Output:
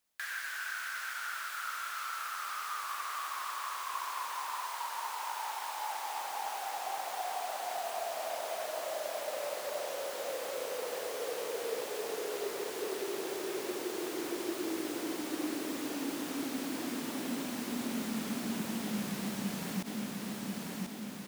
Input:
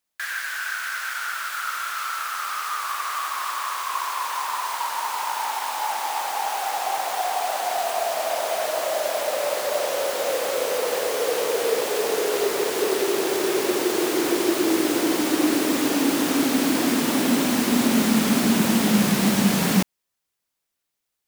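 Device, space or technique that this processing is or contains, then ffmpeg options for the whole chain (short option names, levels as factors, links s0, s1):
de-esser from a sidechain: -filter_complex "[0:a]asettb=1/sr,asplit=3[s0][s1][s2];[s0]atrim=end=4.514[s3];[s1]atrim=start=4.51:end=6.14,asetpts=PTS-STARTPTS,afade=t=in:d=0.004:c=qsin,afade=t=out:st=1.626:d=0.004:c=qsin,highpass=310[s4];[s2]atrim=start=6.136[s5];[s3][s4]acrossfade=d=0.004:c1=hsin:c2=qsin[s6];[s6][s5]acrossfade=d=0.004:c1=qsin:c2=hsin,aecho=1:1:1039|2078|3117|4156:0.141|0.0607|0.0261|0.0112,asplit=2[s7][s8];[s8]highpass=4700,apad=whole_len=1121699[s9];[s7][s9]sidechaincompress=threshold=0.00501:ratio=6:attack=3.3:release=44"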